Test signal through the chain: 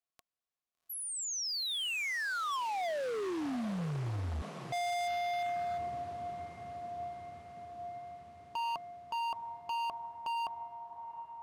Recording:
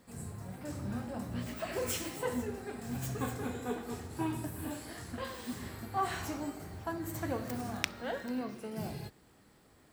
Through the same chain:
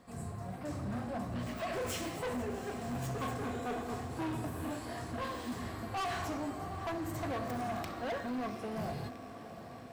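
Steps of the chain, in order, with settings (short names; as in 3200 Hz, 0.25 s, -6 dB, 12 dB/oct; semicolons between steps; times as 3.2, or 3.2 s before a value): small resonant body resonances 700/1100 Hz, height 10 dB, ringing for 40 ms; soft clip -18.5 dBFS; high shelf 8500 Hz -10.5 dB; diffused feedback echo 0.756 s, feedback 66%, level -14 dB; overloaded stage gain 35 dB; gain +1.5 dB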